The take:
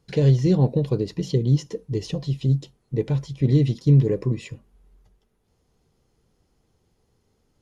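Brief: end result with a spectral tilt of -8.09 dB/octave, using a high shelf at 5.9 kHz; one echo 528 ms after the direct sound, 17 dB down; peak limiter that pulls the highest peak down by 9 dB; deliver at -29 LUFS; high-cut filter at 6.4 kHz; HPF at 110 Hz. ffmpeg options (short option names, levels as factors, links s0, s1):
-af "highpass=110,lowpass=6400,highshelf=f=5900:g=7.5,alimiter=limit=0.158:level=0:latency=1,aecho=1:1:528:0.141,volume=0.794"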